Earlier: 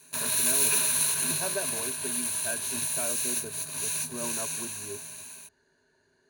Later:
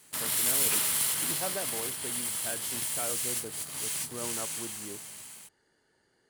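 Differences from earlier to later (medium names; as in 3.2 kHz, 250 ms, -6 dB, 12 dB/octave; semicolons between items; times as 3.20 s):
speech: remove low-pass 8.1 kHz; master: remove rippled EQ curve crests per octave 1.5, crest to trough 13 dB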